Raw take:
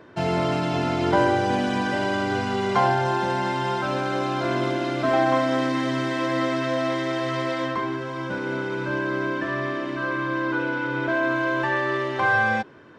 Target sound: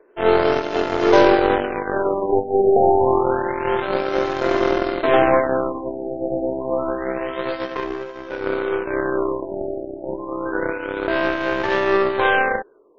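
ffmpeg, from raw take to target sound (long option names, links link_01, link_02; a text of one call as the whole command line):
ffmpeg -i in.wav -af "highpass=frequency=420:width_type=q:width=4.9,aeval=exprs='0.531*(cos(1*acos(clip(val(0)/0.531,-1,1)))-cos(1*PI/2))+0.0668*(cos(4*acos(clip(val(0)/0.531,-1,1)))-cos(4*PI/2))+0.0168*(cos(6*acos(clip(val(0)/0.531,-1,1)))-cos(6*PI/2))+0.0596*(cos(7*acos(clip(val(0)/0.531,-1,1)))-cos(7*PI/2))':channel_layout=same,afftfilt=real='re*lt(b*sr/1024,830*pow(7300/830,0.5+0.5*sin(2*PI*0.28*pts/sr)))':imag='im*lt(b*sr/1024,830*pow(7300/830,0.5+0.5*sin(2*PI*0.28*pts/sr)))':win_size=1024:overlap=0.75,volume=1.5dB" out.wav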